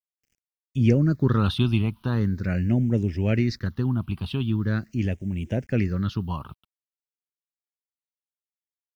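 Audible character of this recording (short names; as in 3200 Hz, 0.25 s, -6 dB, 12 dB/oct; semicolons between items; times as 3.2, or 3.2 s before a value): a quantiser's noise floor 10-bit, dither none; phasing stages 6, 0.42 Hz, lowest notch 490–1200 Hz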